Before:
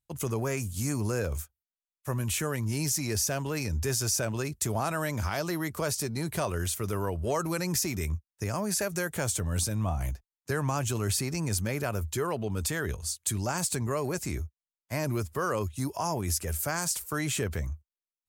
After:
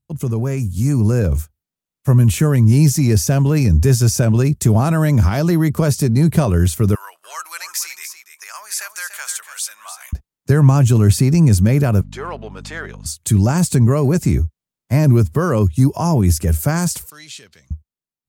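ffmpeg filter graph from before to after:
-filter_complex "[0:a]asettb=1/sr,asplit=3[s0][s1][s2];[s0]atrim=end=6.954[s3];[s1]atrim=start=6.95:end=10.13,asetpts=PTS-STARTPTS,afade=t=in:d=0.004:c=qsin,afade=t=out:st=3.176:d=0.004:c=qsin,highpass=f=1200:w=0.5412,highpass=f=1200:w=1.3066,aecho=1:1:291:0.316,atrim=end_sample=140238[s4];[s2]atrim=start=10.126[s5];[s3][s4]acrossfade=d=0.004:c1=hsin:c2=qsin[s6];[s6][s5]acrossfade=d=0.004:c1=qsin:c2=hsin,asettb=1/sr,asplit=3[s7][s8][s9];[s7]atrim=end=12.014[s10];[s8]atrim=start=12.01:end=13.06,asetpts=PTS-STARTPTS,afade=t=in:d=0.004:c=qsin,afade=t=out:st=1.046:d=0.004:c=qsin,aeval=exprs='if(lt(val(0),0),0.708*val(0),val(0))':c=same,highpass=780,lowpass=4200,aeval=exprs='val(0)+0.00282*(sin(2*PI*50*n/s)+sin(2*PI*2*50*n/s)/2+sin(2*PI*3*50*n/s)/3+sin(2*PI*4*50*n/s)/4+sin(2*PI*5*50*n/s)/5)':c=same[s11];[s9]atrim=start=13.056[s12];[s10][s11]acrossfade=d=0.004:c1=hsin:c2=qsin[s13];[s13][s12]acrossfade=d=0.004:c1=qsin:c2=hsin,asettb=1/sr,asplit=3[s14][s15][s16];[s14]atrim=end=17.104[s17];[s15]atrim=start=17.1:end=17.71,asetpts=PTS-STARTPTS,afade=t=in:d=0.004:c=qsin,afade=t=out:st=0.606:d=0.004:c=qsin,aeval=exprs='sgn(val(0))*max(abs(val(0))-0.00106,0)':c=same,bandpass=f=4300:t=q:w=2[s18];[s16]atrim=start=17.706[s19];[s17][s18]acrossfade=d=0.004:c1=hsin:c2=qsin[s20];[s20][s19]acrossfade=d=0.004:c1=qsin:c2=hsin,lowshelf=f=120:g=3.5,dynaudnorm=f=200:g=11:m=2.24,equalizer=f=160:t=o:w=2.6:g=14,volume=0.891"

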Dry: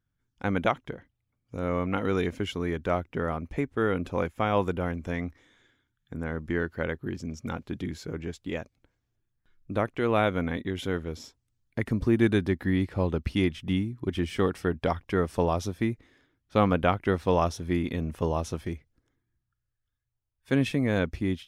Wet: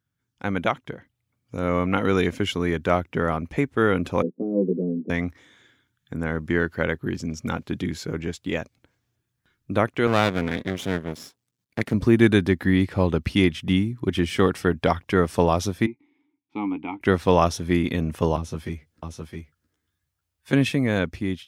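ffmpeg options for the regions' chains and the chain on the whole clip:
-filter_complex "[0:a]asettb=1/sr,asplit=3[s0][s1][s2];[s0]atrim=end=4.224[s3];[s1]atrim=start=4.22:end=5.1,asetpts=PTS-STARTPTS,afade=t=in:d=0.004:c=qsin,afade=t=out:st=0.876:d=0.004:c=qsin,asuperpass=centerf=290:order=8:qfactor=1,asplit=2[s4][s5];[s5]adelay=16,volume=0.75[s6];[s4][s6]amix=inputs=2:normalize=0,atrim=end_sample=38808[s7];[s2]atrim=start=5.096[s8];[s3][s7]acrossfade=d=0.004:c1=hsin:c2=qsin[s9];[s9][s8]acrossfade=d=0.004:c1=qsin:c2=hsin,asettb=1/sr,asplit=3[s10][s11][s12];[s10]atrim=end=10.074[s13];[s11]atrim=start=10.07:end=11.94,asetpts=PTS-STARTPTS,afade=t=in:d=0.004:c=qsin,afade=t=out:st=1.866:d=0.004:c=qsin,lowshelf=f=110:t=q:w=1.5:g=-11,aeval=exprs='max(val(0),0)':c=same[s14];[s12]atrim=start=11.936[s15];[s13][s14]acrossfade=d=0.004:c1=hsin:c2=qsin[s16];[s16][s15]acrossfade=d=0.004:c1=qsin:c2=hsin,asettb=1/sr,asplit=3[s17][s18][s19];[s17]atrim=end=15.864[s20];[s18]atrim=start=15.86:end=17.01,asetpts=PTS-STARTPTS,afade=t=in:d=0.004:c=qsin,afade=t=out:st=1.146:d=0.004:c=qsin,asplit=3[s21][s22][s23];[s21]bandpass=f=300:t=q:w=8,volume=1[s24];[s22]bandpass=f=870:t=q:w=8,volume=0.501[s25];[s23]bandpass=f=2240:t=q:w=8,volume=0.355[s26];[s24][s25][s26]amix=inputs=3:normalize=0,asplit=2[s27][s28];[s28]adelay=14,volume=0.266[s29];[s27][s29]amix=inputs=2:normalize=0,atrim=end_sample=50715[s30];[s19]atrim=start=17.006[s31];[s20][s30]acrossfade=d=0.004:c1=hsin:c2=qsin[s32];[s32][s31]acrossfade=d=0.004:c1=qsin:c2=hsin,asettb=1/sr,asplit=3[s33][s34][s35];[s33]atrim=end=18.364[s36];[s34]atrim=start=18.36:end=20.53,asetpts=PTS-STARTPTS,afade=t=in:d=0.004:c=qsin,afade=t=out:st=2.166:d=0.004:c=qsin,aecho=1:1:663:0.299,atrim=end_sample=95697,acrossover=split=340|780[s37][s38][s39];[s37]acompressor=threshold=0.0158:ratio=4[s40];[s38]acompressor=threshold=0.00562:ratio=4[s41];[s39]acompressor=threshold=0.00316:ratio=4[s42];[s40][s41][s42]amix=inputs=3:normalize=0,asplit=2[s43][s44];[s44]adelay=13,volume=0.708[s45];[s43][s45]amix=inputs=2:normalize=0,atrim=end_sample=95697[s46];[s35]atrim=start=20.526[s47];[s36][s46]acrossfade=d=0.004:c1=hsin:c2=qsin[s48];[s48][s47]acrossfade=d=0.004:c1=qsin:c2=hsin,highpass=97,equalizer=f=460:w=0.4:g=-3,dynaudnorm=f=350:g=7:m=1.78,volume=1.5"

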